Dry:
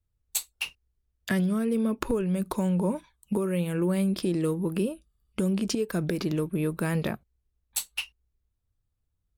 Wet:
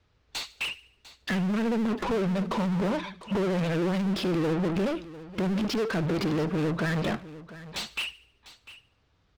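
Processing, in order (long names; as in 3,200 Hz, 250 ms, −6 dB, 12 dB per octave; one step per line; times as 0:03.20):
low-pass filter 5,500 Hz 24 dB per octave
low-shelf EQ 440 Hz +3.5 dB
hard clipping −23 dBFS, distortion −11 dB
mid-hump overdrive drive 31 dB, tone 3,200 Hz, clips at −23 dBFS
delay with a high-pass on its return 74 ms, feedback 44%, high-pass 1,700 Hz, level −18 dB
pitch vibrato 14 Hz 76 cents
single-tap delay 699 ms −16.5 dB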